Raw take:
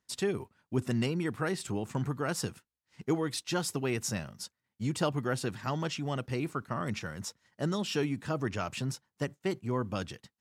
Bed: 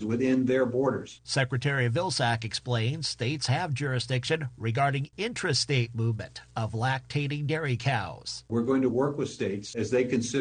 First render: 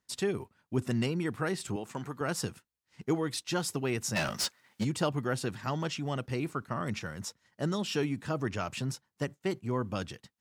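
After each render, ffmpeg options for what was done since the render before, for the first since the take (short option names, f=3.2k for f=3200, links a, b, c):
-filter_complex "[0:a]asettb=1/sr,asplit=3[a][b][c];[a]atrim=end=1.764[d];[b]atrim=start=1.76:end=2.21,asetpts=PTS-STARTPTS,afade=t=in:d=0.004:c=qsin,afade=t=out:st=0.446:d=0.004:c=qsin,highpass=f=380:p=1[e];[c]atrim=start=2.206[f];[d][e]acrossfade=d=0.004:c1=hsin:c2=qsin[g];[g][f]acrossfade=d=0.004:c1=qsin:c2=hsin,asplit=3[h][i][j];[h]afade=t=out:st=4.15:d=0.02[k];[i]asplit=2[l][m];[m]highpass=f=720:p=1,volume=29dB,asoftclip=type=tanh:threshold=-20dB[n];[l][n]amix=inputs=2:normalize=0,lowpass=f=5.7k:p=1,volume=-6dB,afade=t=in:st=4.15:d=0.02,afade=t=out:st=4.83:d=0.02[o];[j]afade=t=in:st=4.83:d=0.02[p];[k][o][p]amix=inputs=3:normalize=0"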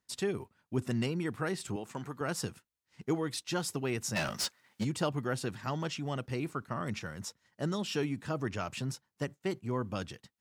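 -af "volume=-2dB"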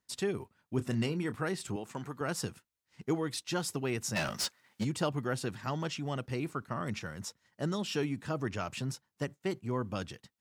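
-filter_complex "[0:a]asettb=1/sr,asplit=3[a][b][c];[a]atrim=end=0.764[d];[b]atrim=start=0.76:end=1.35,asetpts=PTS-STARTPTS,afade=t=in:d=0.004:c=qsin,afade=t=out:st=0.586:d=0.004:c=qsin,asplit=2[e][f];[f]adelay=27,volume=-12dB[g];[e][g]amix=inputs=2:normalize=0,atrim=end_sample=26019[h];[c]atrim=start=1.346[i];[d][h]acrossfade=d=0.004:c1=hsin:c2=qsin[j];[j][i]acrossfade=d=0.004:c1=qsin:c2=hsin"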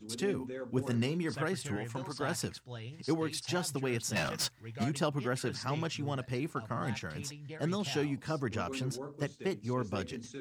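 -filter_complex "[1:a]volume=-16.5dB[a];[0:a][a]amix=inputs=2:normalize=0"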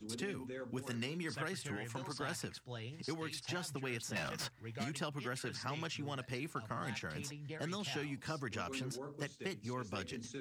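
-filter_complex "[0:a]acrossover=split=170|1300|2600[a][b][c][d];[a]acompressor=threshold=-49dB:ratio=4[e];[b]acompressor=threshold=-43dB:ratio=4[f];[c]acompressor=threshold=-43dB:ratio=4[g];[d]acompressor=threshold=-46dB:ratio=4[h];[e][f][g][h]amix=inputs=4:normalize=0"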